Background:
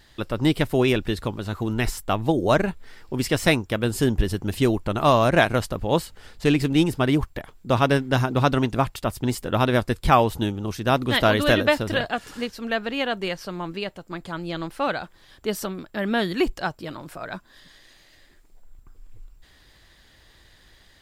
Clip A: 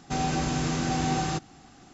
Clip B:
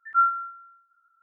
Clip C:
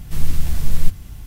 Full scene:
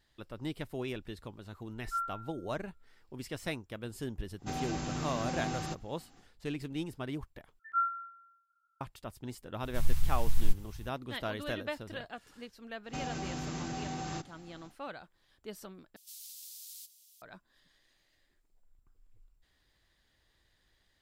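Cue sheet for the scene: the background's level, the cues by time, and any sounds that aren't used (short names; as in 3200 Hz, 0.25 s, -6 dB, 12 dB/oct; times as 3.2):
background -18 dB
1.77 add B -12.5 dB + HPF 1200 Hz
4.36 add A -9.5 dB, fades 0.10 s
7.59 replace with B -10 dB
9.63 add C -10 dB + elliptic band-stop 140–820 Hz
12.83 add A -5.5 dB, fades 0.10 s + compressor 5:1, threshold -29 dBFS
15.96 replace with C -8 dB + inverse Chebyshev high-pass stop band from 910 Hz, stop band 70 dB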